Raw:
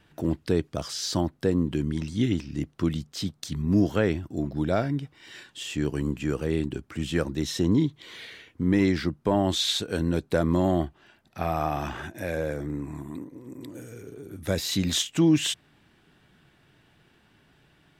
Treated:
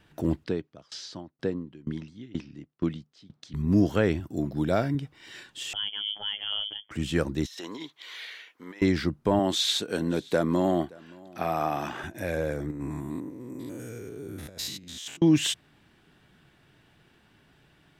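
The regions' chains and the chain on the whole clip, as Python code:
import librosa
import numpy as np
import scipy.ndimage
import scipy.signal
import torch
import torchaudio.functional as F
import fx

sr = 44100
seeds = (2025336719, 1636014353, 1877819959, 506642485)

y = fx.chain(x, sr, fx.bandpass_edges(low_hz=120.0, high_hz=4600.0),
    fx.tremolo_decay(direction='decaying', hz=2.1, depth_db=25), at=(0.44, 3.54))
y = fx.chain(y, sr, fx.highpass(hz=79.0, slope=12),
    fx.high_shelf(hz=12000.0, db=10.5), at=(4.2, 4.95))
y = fx.chain(y, sr, fx.peak_eq(hz=440.0, db=-6.5, octaves=1.7),
    fx.robotise(hz=103.0),
    fx.freq_invert(carrier_hz=3300), at=(5.73, 6.91))
y = fx.chain(y, sr, fx.highpass(hz=830.0, slope=12),
    fx.peak_eq(hz=8700.0, db=-5.5, octaves=0.6),
    fx.over_compress(threshold_db=-39.0, ratio=-0.5), at=(7.46, 8.82))
y = fx.chain(y, sr, fx.highpass(hz=180.0, slope=12),
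    fx.echo_single(ms=573, db=-24.0), at=(9.39, 12.04))
y = fx.chain(y, sr, fx.spec_steps(hold_ms=100),
    fx.low_shelf(hz=96.0, db=-4.5),
    fx.over_compress(threshold_db=-35.0, ratio=-0.5), at=(12.71, 15.22))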